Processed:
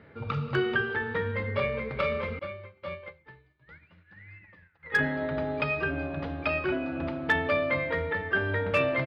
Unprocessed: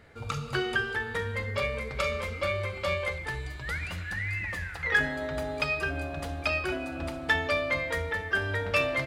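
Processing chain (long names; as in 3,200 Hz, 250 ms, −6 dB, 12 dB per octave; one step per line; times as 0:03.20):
Bessel low-pass filter 2,500 Hz, order 8
notch filter 720 Hz, Q 12
single-tap delay 82 ms −24 dB
hard clipping −17.5 dBFS, distortion −32 dB
high-pass filter 160 Hz 12 dB per octave
low-shelf EQ 230 Hz +10 dB
0:02.39–0:04.99: expander for the loud parts 2.5 to 1, over −43 dBFS
level +1.5 dB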